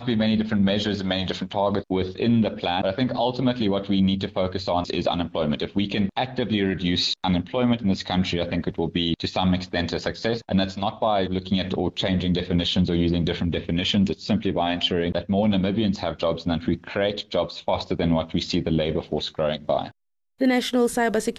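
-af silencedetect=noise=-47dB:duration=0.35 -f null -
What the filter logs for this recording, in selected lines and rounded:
silence_start: 19.91
silence_end: 20.40 | silence_duration: 0.48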